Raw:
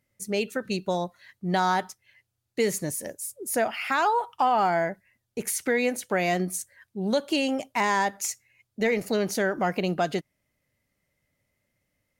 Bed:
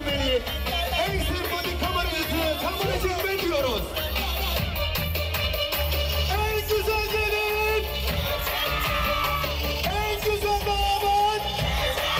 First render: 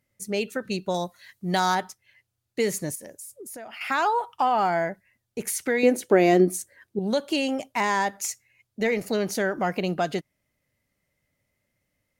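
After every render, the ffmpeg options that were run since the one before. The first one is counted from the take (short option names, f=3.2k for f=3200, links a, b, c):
-filter_complex "[0:a]asettb=1/sr,asplit=3[a][b][c];[a]atrim=end=0.944[d];[b]atrim=start=0.94:end=1.75,asetpts=PTS-STARTPTS,afade=t=in:d=0.004:c=qsin,afade=t=out:st=0.806:d=0.004:c=qsin,highshelf=f=4.2k:g=11[e];[c]atrim=start=1.746[f];[d][e]acrossfade=d=0.004:c1=hsin:c2=qsin[g];[g][f]acrossfade=d=0.004:c1=qsin:c2=hsin,asettb=1/sr,asplit=3[h][i][j];[h]atrim=end=2.954[k];[i]atrim=start=2.95:end=3.81,asetpts=PTS-STARTPTS,afade=t=in:d=0.004:c=qsin,afade=t=out:st=0.856:d=0.004:c=qsin,acompressor=threshold=-37dB:ratio=6:attack=3.2:release=140:knee=1:detection=peak[l];[j]atrim=start=3.806[m];[k][l]acrossfade=d=0.004:c1=hsin:c2=qsin[n];[n][m]acrossfade=d=0.004:c1=qsin:c2=hsin,asettb=1/sr,asplit=3[o][p][q];[o]atrim=end=5.834[r];[p]atrim=start=5.83:end=6.99,asetpts=PTS-STARTPTS,afade=t=in:d=0.004:c=qsin,afade=t=out:st=1.156:d=0.004:c=qsin,equalizer=f=350:t=o:w=1.2:g=13.5[s];[q]atrim=start=6.986[t];[r][s]acrossfade=d=0.004:c1=hsin:c2=qsin[u];[u][t]acrossfade=d=0.004:c1=qsin:c2=hsin"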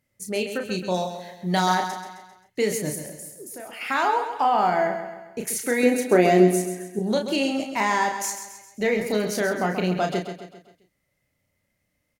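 -filter_complex "[0:a]asplit=2[a][b];[b]adelay=33,volume=-5.5dB[c];[a][c]amix=inputs=2:normalize=0,asplit=2[d][e];[e]aecho=0:1:132|264|396|528|660:0.355|0.17|0.0817|0.0392|0.0188[f];[d][f]amix=inputs=2:normalize=0"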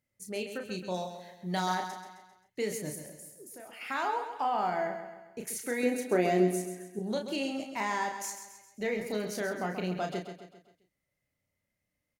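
-af "volume=-9.5dB"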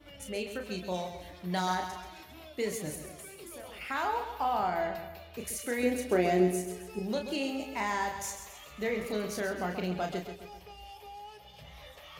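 -filter_complex "[1:a]volume=-25dB[a];[0:a][a]amix=inputs=2:normalize=0"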